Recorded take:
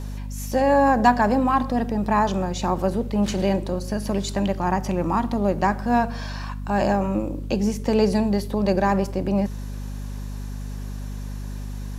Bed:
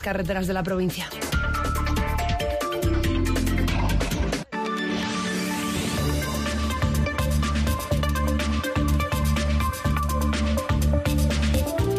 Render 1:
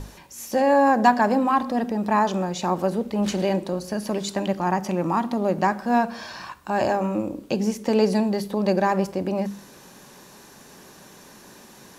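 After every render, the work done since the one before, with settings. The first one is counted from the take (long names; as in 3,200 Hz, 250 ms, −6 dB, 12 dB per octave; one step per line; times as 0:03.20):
mains-hum notches 50/100/150/200/250 Hz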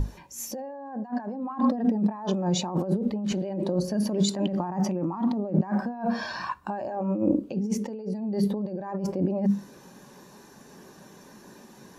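compressor whose output falls as the input rises −30 dBFS, ratio −1
every bin expanded away from the loudest bin 1.5 to 1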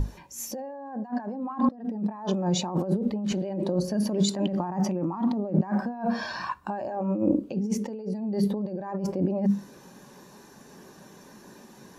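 0:01.69–0:02.32: fade in, from −21 dB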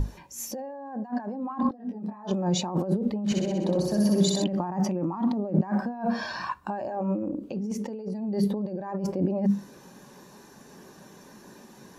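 0:01.63–0:02.31: micro pitch shift up and down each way 29 cents
0:03.21–0:04.44: flutter between parallel walls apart 10.8 metres, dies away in 1.1 s
0:07.18–0:08.28: downward compressor 5 to 1, threshold −27 dBFS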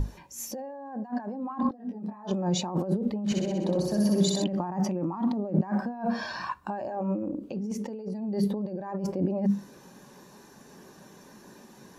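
level −1.5 dB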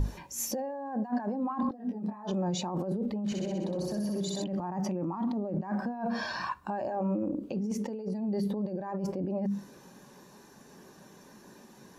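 brickwall limiter −24 dBFS, peak gain reduction 11 dB
speech leveller within 4 dB 2 s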